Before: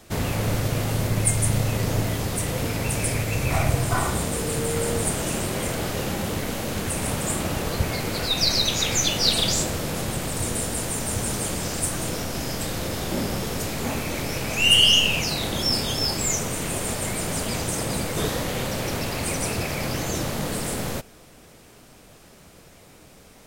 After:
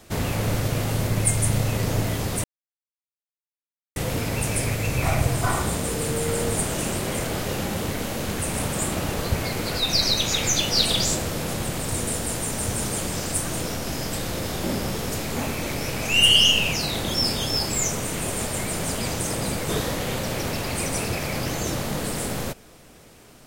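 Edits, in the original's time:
2.44 insert silence 1.52 s

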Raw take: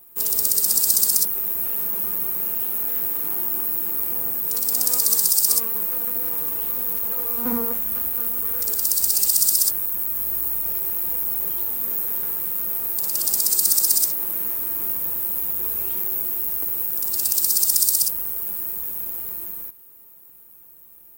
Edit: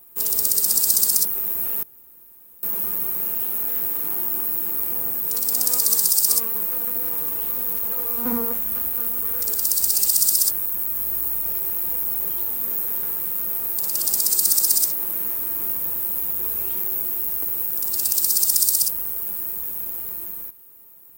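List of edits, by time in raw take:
1.83 insert room tone 0.80 s

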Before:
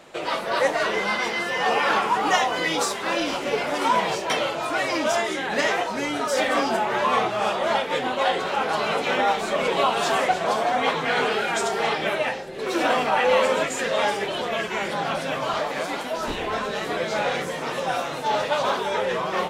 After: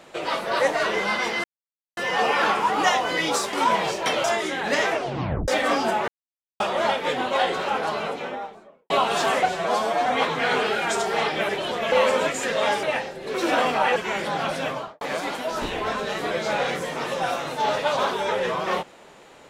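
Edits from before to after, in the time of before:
1.44 insert silence 0.53 s
3–3.77 cut
4.48–5.1 cut
5.76 tape stop 0.58 s
6.94–7.46 mute
8.4–9.76 studio fade out
10.32–10.72 stretch 1.5×
12.15–13.28 swap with 14.19–14.62
15.31–15.67 studio fade out

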